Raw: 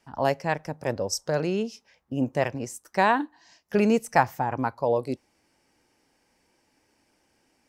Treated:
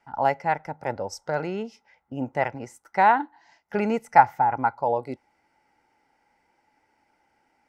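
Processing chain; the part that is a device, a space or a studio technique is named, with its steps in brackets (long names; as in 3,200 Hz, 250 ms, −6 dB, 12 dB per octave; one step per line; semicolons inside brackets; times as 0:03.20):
inside a helmet (high-shelf EQ 4,700 Hz −9 dB; hollow resonant body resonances 850/1,400/2,000 Hz, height 14 dB, ringing for 20 ms)
level −4.5 dB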